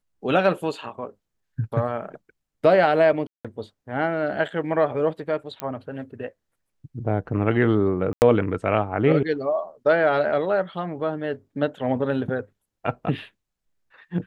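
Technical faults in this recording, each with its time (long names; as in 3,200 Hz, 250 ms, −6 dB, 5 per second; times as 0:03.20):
0:03.27–0:03.45: drop-out 176 ms
0:05.60: click −14 dBFS
0:08.13–0:08.22: drop-out 89 ms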